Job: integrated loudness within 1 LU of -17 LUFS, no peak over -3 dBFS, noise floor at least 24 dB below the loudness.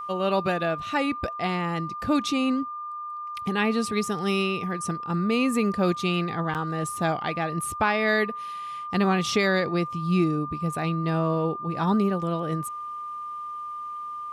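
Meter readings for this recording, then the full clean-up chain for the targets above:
dropouts 1; longest dropout 8.0 ms; steady tone 1.2 kHz; tone level -32 dBFS; loudness -26.5 LUFS; peak level -9.5 dBFS; loudness target -17.0 LUFS
-> interpolate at 6.54 s, 8 ms; band-stop 1.2 kHz, Q 30; trim +9.5 dB; peak limiter -3 dBFS

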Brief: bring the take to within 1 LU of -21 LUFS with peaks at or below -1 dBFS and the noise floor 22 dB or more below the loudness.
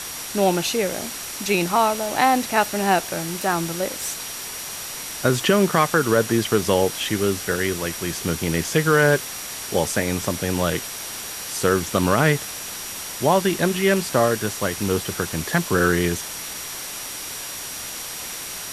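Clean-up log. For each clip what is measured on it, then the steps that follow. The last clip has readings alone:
steady tone 5.7 kHz; tone level -39 dBFS; noise floor -33 dBFS; noise floor target -44 dBFS; loudness -22.0 LUFS; peak level -3.5 dBFS; loudness target -21.0 LUFS
-> band-stop 5.7 kHz, Q 30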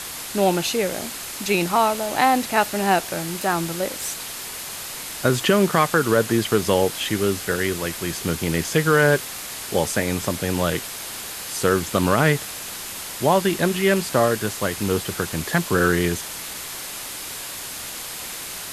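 steady tone not found; noise floor -33 dBFS; noise floor target -45 dBFS
-> noise reduction 12 dB, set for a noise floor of -33 dBFS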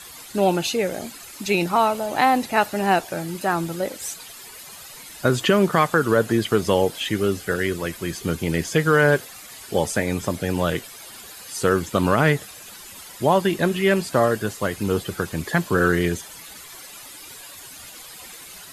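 noise floor -41 dBFS; noise floor target -44 dBFS
-> noise reduction 6 dB, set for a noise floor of -41 dBFS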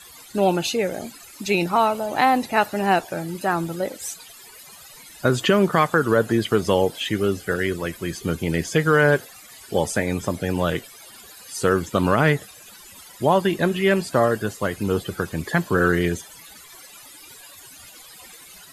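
noise floor -45 dBFS; loudness -22.0 LUFS; peak level -4.0 dBFS; loudness target -21.0 LUFS
-> trim +1 dB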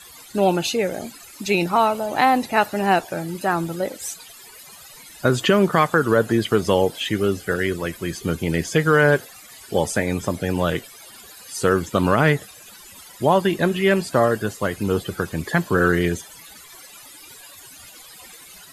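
loudness -21.0 LUFS; peak level -3.0 dBFS; noise floor -44 dBFS

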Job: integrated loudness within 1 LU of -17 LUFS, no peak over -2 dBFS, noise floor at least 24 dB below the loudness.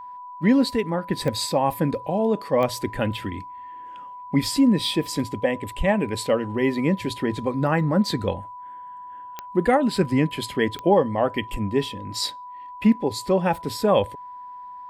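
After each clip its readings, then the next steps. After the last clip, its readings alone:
clicks found 4; steady tone 990 Hz; tone level -36 dBFS; loudness -23.5 LUFS; peak level -6.0 dBFS; loudness target -17.0 LUFS
-> de-click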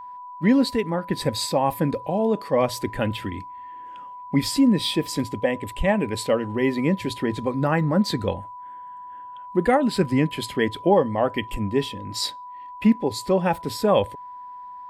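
clicks found 0; steady tone 990 Hz; tone level -36 dBFS
-> band-stop 990 Hz, Q 30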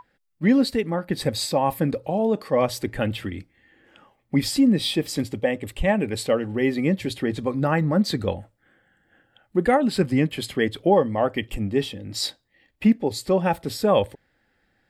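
steady tone not found; loudness -23.5 LUFS; peak level -6.0 dBFS; loudness target -17.0 LUFS
-> trim +6.5 dB; peak limiter -2 dBFS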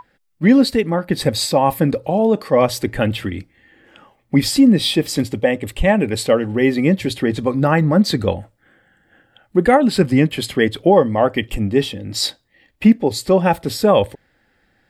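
loudness -17.0 LUFS; peak level -2.0 dBFS; noise floor -62 dBFS

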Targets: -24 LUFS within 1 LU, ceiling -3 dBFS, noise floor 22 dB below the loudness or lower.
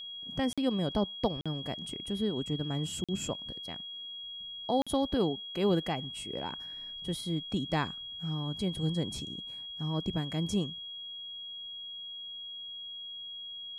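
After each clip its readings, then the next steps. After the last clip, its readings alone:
dropouts 4; longest dropout 46 ms; steady tone 3.3 kHz; tone level -40 dBFS; loudness -34.5 LUFS; peak level -15.0 dBFS; loudness target -24.0 LUFS
-> interpolate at 0.53/1.41/3.04/4.82 s, 46 ms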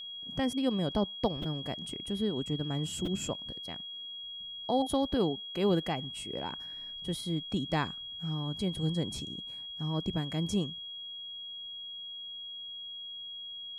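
dropouts 0; steady tone 3.3 kHz; tone level -40 dBFS
-> band-stop 3.3 kHz, Q 30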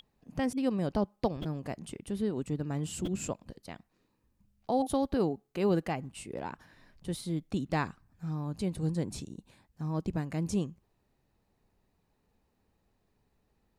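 steady tone not found; loudness -34.0 LUFS; peak level -15.0 dBFS; loudness target -24.0 LUFS
-> trim +10 dB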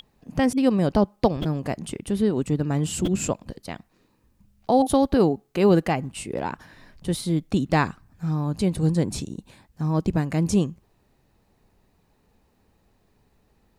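loudness -24.0 LUFS; peak level -5.0 dBFS; noise floor -66 dBFS

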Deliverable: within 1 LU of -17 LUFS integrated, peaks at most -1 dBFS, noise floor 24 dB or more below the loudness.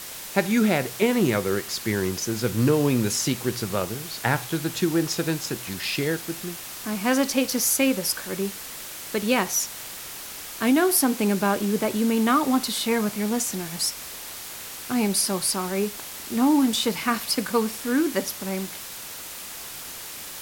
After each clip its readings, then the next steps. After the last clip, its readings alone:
noise floor -38 dBFS; noise floor target -49 dBFS; loudness -24.5 LUFS; peak level -6.0 dBFS; loudness target -17.0 LUFS
-> noise reduction 11 dB, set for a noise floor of -38 dBFS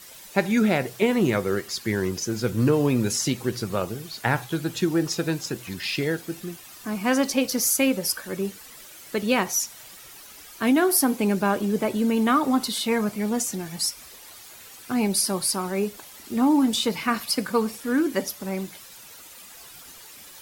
noise floor -45 dBFS; noise floor target -49 dBFS
-> noise reduction 6 dB, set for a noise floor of -45 dBFS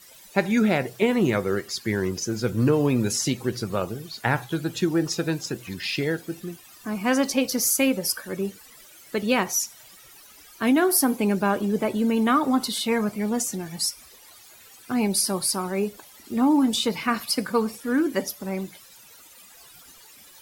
noise floor -50 dBFS; loudness -24.5 LUFS; peak level -6.0 dBFS; loudness target -17.0 LUFS
-> trim +7.5 dB; peak limiter -1 dBFS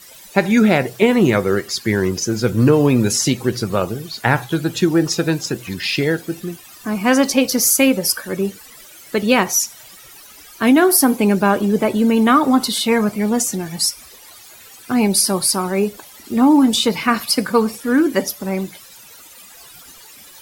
loudness -17.0 LUFS; peak level -1.0 dBFS; noise floor -42 dBFS

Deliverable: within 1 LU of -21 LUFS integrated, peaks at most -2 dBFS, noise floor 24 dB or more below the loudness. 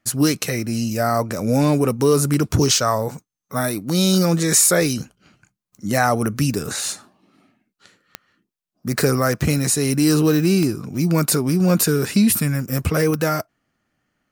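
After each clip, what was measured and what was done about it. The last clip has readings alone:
clicks found 4; loudness -19.0 LUFS; peak level -2.5 dBFS; loudness target -21.0 LUFS
-> de-click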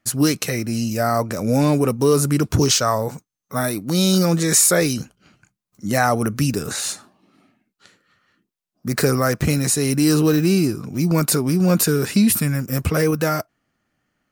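clicks found 2; loudness -19.0 LUFS; peak level -2.5 dBFS; loudness target -21.0 LUFS
-> trim -2 dB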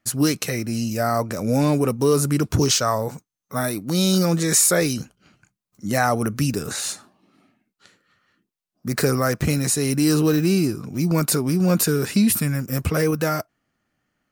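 loudness -21.0 LUFS; peak level -4.5 dBFS; noise floor -82 dBFS

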